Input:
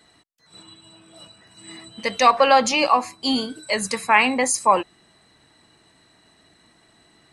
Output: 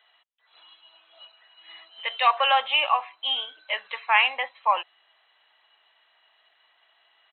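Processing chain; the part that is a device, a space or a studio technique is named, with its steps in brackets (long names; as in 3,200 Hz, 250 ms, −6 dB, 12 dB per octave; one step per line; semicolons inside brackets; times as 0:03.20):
musical greeting card (downsampling to 8,000 Hz; high-pass filter 680 Hz 24 dB per octave; parametric band 3,100 Hz +9 dB 0.44 octaves)
level −4.5 dB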